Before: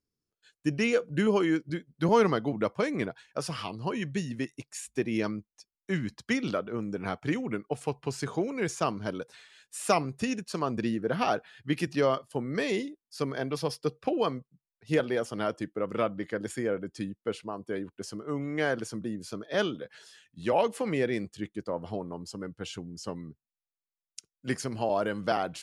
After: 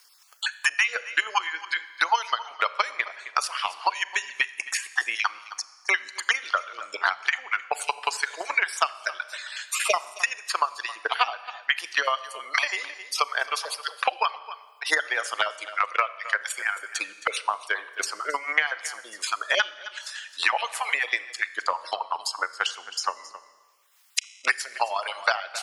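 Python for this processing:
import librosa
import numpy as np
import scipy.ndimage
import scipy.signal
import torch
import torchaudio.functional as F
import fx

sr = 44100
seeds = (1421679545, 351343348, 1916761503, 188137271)

p1 = fx.spec_dropout(x, sr, seeds[0], share_pct=24)
p2 = scipy.signal.sosfilt(scipy.signal.butter(4, 900.0, 'highpass', fs=sr, output='sos'), p1)
p3 = fx.spec_gate(p2, sr, threshold_db=-30, keep='strong')
p4 = fx.transient(p3, sr, attack_db=12, sustain_db=0)
p5 = p4 + fx.echo_single(p4, sr, ms=264, db=-21.0, dry=0)
p6 = fx.rev_schroeder(p5, sr, rt60_s=0.8, comb_ms=28, drr_db=16.0)
p7 = fx.band_squash(p6, sr, depth_pct=100)
y = F.gain(torch.from_numpy(p7), 5.5).numpy()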